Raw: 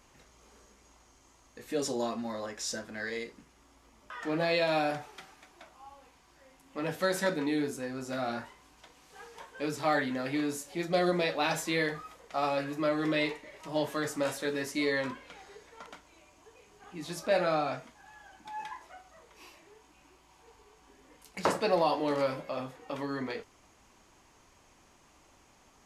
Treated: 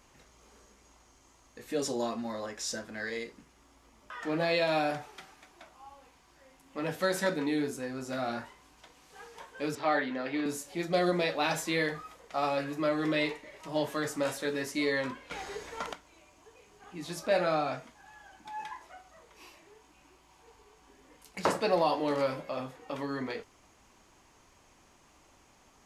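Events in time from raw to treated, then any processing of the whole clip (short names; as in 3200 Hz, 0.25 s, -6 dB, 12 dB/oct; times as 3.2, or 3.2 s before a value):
9.75–10.46 three-band isolator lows -14 dB, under 200 Hz, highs -18 dB, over 4900 Hz
15.31–15.93 gain +11 dB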